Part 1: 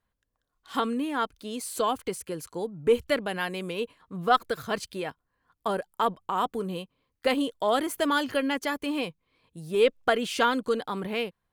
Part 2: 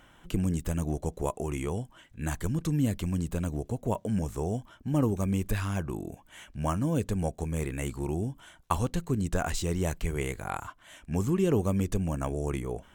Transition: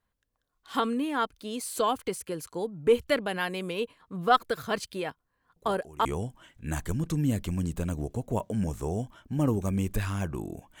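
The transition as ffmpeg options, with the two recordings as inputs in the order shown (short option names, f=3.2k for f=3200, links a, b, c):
-filter_complex "[1:a]asplit=2[a][b];[0:a]apad=whole_dur=10.8,atrim=end=10.8,atrim=end=6.052[c];[b]atrim=start=1.598:end=6.35[d];[a]atrim=start=1.11:end=1.6,asetpts=PTS-STARTPTS,volume=-16dB,afade=t=in:d=0.004:c=hsin,afade=t=out:st=0.486:d=0.004:c=hsin,adelay=5560[e];[c][d]acrossfade=d=0.004:c1=hsin:c2=hsin[f];[f][e]amix=inputs=2:normalize=0"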